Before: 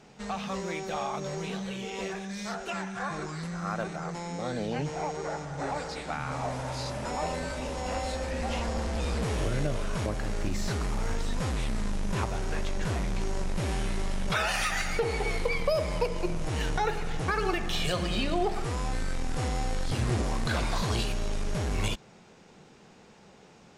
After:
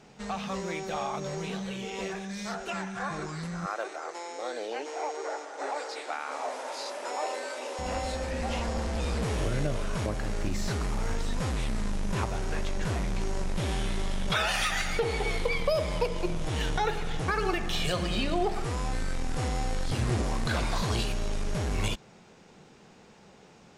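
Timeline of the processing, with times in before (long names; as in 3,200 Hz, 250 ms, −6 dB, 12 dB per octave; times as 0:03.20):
0:03.66–0:07.79: inverse Chebyshev high-pass filter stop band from 170 Hz
0:13.56–0:17.21: parametric band 3,400 Hz +6.5 dB 0.28 octaves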